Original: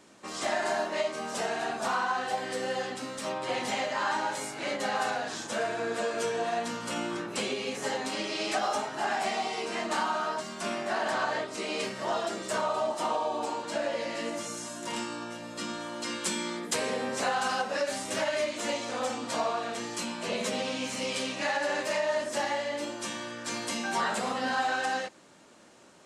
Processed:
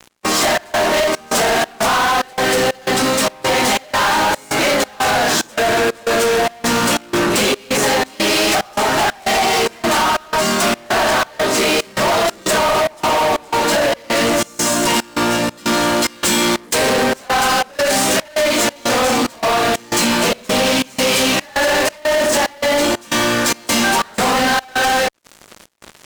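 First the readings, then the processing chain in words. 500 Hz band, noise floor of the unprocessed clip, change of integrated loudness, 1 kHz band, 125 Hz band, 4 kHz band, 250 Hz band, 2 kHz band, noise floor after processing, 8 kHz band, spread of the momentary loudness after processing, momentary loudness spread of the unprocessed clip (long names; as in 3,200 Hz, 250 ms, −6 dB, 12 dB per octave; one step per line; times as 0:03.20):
+14.5 dB, −42 dBFS, +15.5 dB, +14.0 dB, +18.5 dB, +17.5 dB, +16.5 dB, +15.5 dB, −40 dBFS, +18.0 dB, 2 LU, 6 LU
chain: downward compressor, threshold −30 dBFS, peak gain reduction 6 dB
fuzz pedal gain 43 dB, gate −51 dBFS
gate pattern "x..xxxx..xxxx" 183 BPM −24 dB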